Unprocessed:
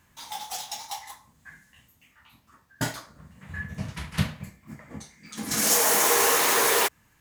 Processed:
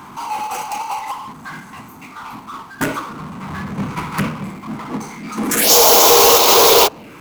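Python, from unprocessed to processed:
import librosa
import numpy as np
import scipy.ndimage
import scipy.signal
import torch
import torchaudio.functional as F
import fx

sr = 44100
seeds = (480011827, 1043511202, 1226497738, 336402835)

p1 = fx.wiener(x, sr, points=25)
p2 = scipy.signal.sosfilt(scipy.signal.butter(2, 400.0, 'highpass', fs=sr, output='sos'), p1)
p3 = fx.level_steps(p2, sr, step_db=24)
p4 = p2 + (p3 * librosa.db_to_amplitude(0.0))
p5 = fx.env_phaser(p4, sr, low_hz=550.0, high_hz=1800.0, full_db=-20.5)
p6 = fx.power_curve(p5, sr, exponent=0.5)
y = p6 * librosa.db_to_amplitude(6.0)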